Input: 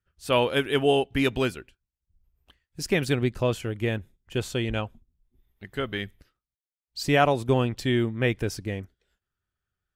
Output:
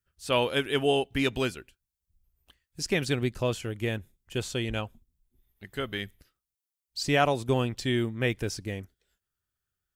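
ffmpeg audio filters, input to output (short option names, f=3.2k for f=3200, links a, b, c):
-filter_complex "[0:a]highshelf=f=5.5k:g=11.5,acrossover=split=8000[a][b];[b]acompressor=threshold=-49dB:ratio=4:attack=1:release=60[c];[a][c]amix=inputs=2:normalize=0,volume=-3.5dB"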